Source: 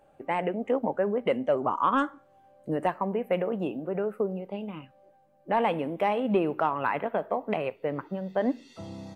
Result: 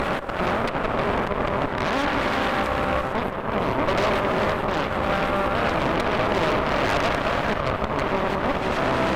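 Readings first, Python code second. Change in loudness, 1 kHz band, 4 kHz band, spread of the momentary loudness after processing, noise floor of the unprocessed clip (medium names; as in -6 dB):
+5.5 dB, +6.5 dB, +15.5 dB, 3 LU, -61 dBFS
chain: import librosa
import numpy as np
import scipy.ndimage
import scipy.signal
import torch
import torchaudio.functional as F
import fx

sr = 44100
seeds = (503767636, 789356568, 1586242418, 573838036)

p1 = fx.bin_compress(x, sr, power=0.4)
p2 = scipy.signal.sosfilt(scipy.signal.butter(2, 170.0, 'highpass', fs=sr, output='sos'), p1)
p3 = fx.hum_notches(p2, sr, base_hz=60, count=7)
p4 = fx.dynamic_eq(p3, sr, hz=650.0, q=6.4, threshold_db=-40.0, ratio=4.0, max_db=8)
p5 = fx.auto_swell(p4, sr, attack_ms=610.0)
p6 = fx.over_compress(p5, sr, threshold_db=-32.0, ratio=-0.5)
p7 = p5 + F.gain(torch.from_numpy(p6), -1.5).numpy()
p8 = fx.harmonic_tremolo(p7, sr, hz=9.2, depth_pct=50, crossover_hz=930.0)
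p9 = np.clip(p8, -10.0 ** (-22.5 / 20.0), 10.0 ** (-22.5 / 20.0))
p10 = p9 + fx.echo_stepped(p9, sr, ms=222, hz=570.0, octaves=1.4, feedback_pct=70, wet_db=-8.0, dry=0)
p11 = fx.rev_gated(p10, sr, seeds[0], gate_ms=480, shape='rising', drr_db=1.5)
y = fx.cheby_harmonics(p11, sr, harmonics=(6,), levels_db=(-7,), full_scale_db=-14.0)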